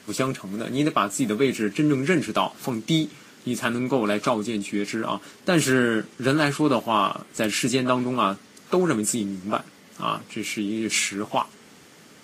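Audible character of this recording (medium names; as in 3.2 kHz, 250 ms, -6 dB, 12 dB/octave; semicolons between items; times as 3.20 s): Vorbis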